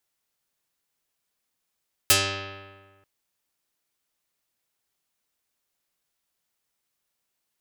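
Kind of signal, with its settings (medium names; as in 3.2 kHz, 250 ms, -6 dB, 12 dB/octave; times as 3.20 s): plucked string G2, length 0.94 s, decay 1.54 s, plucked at 0.42, dark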